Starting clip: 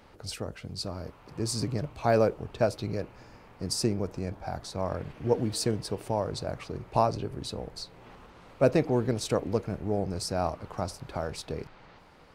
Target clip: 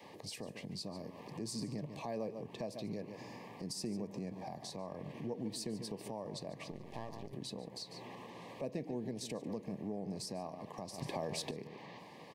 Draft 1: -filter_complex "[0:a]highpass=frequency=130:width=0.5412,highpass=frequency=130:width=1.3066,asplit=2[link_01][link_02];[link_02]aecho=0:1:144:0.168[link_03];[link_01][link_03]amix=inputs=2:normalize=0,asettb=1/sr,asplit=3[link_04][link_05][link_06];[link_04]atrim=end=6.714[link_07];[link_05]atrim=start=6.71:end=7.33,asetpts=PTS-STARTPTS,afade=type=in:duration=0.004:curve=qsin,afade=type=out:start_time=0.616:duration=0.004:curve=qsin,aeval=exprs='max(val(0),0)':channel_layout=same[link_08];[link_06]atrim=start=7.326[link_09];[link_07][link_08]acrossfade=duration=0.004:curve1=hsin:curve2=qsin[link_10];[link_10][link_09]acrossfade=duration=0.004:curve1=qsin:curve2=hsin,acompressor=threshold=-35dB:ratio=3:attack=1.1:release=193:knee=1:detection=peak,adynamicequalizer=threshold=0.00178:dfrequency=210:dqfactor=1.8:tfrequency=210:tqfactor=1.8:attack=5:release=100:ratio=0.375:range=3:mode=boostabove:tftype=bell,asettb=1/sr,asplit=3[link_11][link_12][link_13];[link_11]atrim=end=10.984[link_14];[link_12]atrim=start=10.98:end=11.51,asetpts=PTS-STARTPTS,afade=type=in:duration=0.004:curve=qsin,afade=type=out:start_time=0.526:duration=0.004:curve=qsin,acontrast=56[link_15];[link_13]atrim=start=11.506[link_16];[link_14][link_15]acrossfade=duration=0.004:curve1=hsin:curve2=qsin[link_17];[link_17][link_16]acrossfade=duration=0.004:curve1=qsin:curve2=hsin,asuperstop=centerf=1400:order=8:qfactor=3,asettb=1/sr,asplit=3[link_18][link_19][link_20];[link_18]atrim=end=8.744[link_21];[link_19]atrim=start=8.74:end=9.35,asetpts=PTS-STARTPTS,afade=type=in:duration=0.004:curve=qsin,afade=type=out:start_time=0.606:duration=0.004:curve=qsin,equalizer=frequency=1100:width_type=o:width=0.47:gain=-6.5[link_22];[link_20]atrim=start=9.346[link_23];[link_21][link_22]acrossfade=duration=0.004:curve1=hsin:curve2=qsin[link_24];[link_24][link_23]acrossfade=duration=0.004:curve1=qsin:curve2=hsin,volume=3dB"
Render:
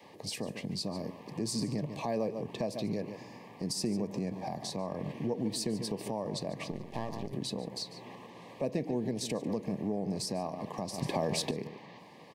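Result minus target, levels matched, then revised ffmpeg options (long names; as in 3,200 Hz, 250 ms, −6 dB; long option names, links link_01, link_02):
downward compressor: peak gain reduction −7.5 dB
-filter_complex "[0:a]highpass=frequency=130:width=0.5412,highpass=frequency=130:width=1.3066,asplit=2[link_01][link_02];[link_02]aecho=0:1:144:0.168[link_03];[link_01][link_03]amix=inputs=2:normalize=0,asettb=1/sr,asplit=3[link_04][link_05][link_06];[link_04]atrim=end=6.714[link_07];[link_05]atrim=start=6.71:end=7.33,asetpts=PTS-STARTPTS,afade=type=in:duration=0.004:curve=qsin,afade=type=out:start_time=0.616:duration=0.004:curve=qsin,aeval=exprs='max(val(0),0)':channel_layout=same[link_08];[link_06]atrim=start=7.326[link_09];[link_07][link_08]acrossfade=duration=0.004:curve1=hsin:curve2=qsin[link_10];[link_10][link_09]acrossfade=duration=0.004:curve1=qsin:curve2=hsin,acompressor=threshold=-46dB:ratio=3:attack=1.1:release=193:knee=1:detection=peak,adynamicequalizer=threshold=0.00178:dfrequency=210:dqfactor=1.8:tfrequency=210:tqfactor=1.8:attack=5:release=100:ratio=0.375:range=3:mode=boostabove:tftype=bell,asettb=1/sr,asplit=3[link_11][link_12][link_13];[link_11]atrim=end=10.984[link_14];[link_12]atrim=start=10.98:end=11.51,asetpts=PTS-STARTPTS,afade=type=in:duration=0.004:curve=qsin,afade=type=out:start_time=0.526:duration=0.004:curve=qsin,acontrast=56[link_15];[link_13]atrim=start=11.506[link_16];[link_14][link_15]acrossfade=duration=0.004:curve1=hsin:curve2=qsin[link_17];[link_17][link_16]acrossfade=duration=0.004:curve1=qsin:curve2=hsin,asuperstop=centerf=1400:order=8:qfactor=3,asettb=1/sr,asplit=3[link_18][link_19][link_20];[link_18]atrim=end=8.744[link_21];[link_19]atrim=start=8.74:end=9.35,asetpts=PTS-STARTPTS,afade=type=in:duration=0.004:curve=qsin,afade=type=out:start_time=0.606:duration=0.004:curve=qsin,equalizer=frequency=1100:width_type=o:width=0.47:gain=-6.5[link_22];[link_20]atrim=start=9.346[link_23];[link_21][link_22]acrossfade=duration=0.004:curve1=hsin:curve2=qsin[link_24];[link_24][link_23]acrossfade=duration=0.004:curve1=qsin:curve2=hsin,volume=3dB"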